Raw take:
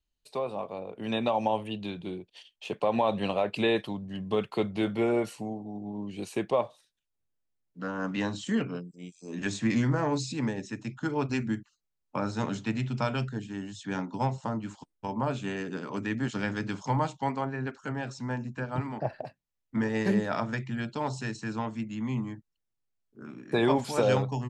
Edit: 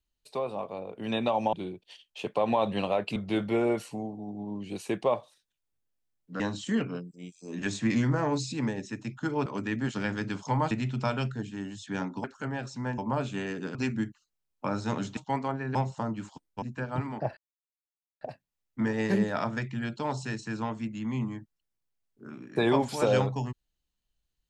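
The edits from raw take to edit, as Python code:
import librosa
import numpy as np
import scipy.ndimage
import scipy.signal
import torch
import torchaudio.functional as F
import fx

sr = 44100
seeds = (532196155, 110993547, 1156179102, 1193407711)

y = fx.edit(x, sr, fx.cut(start_s=1.53, length_s=0.46),
    fx.cut(start_s=3.62, length_s=1.01),
    fx.cut(start_s=7.87, length_s=0.33),
    fx.swap(start_s=11.26, length_s=1.42, other_s=15.85, other_length_s=1.25),
    fx.swap(start_s=14.21, length_s=0.87, other_s=17.68, other_length_s=0.74),
    fx.insert_silence(at_s=19.17, length_s=0.84), tone=tone)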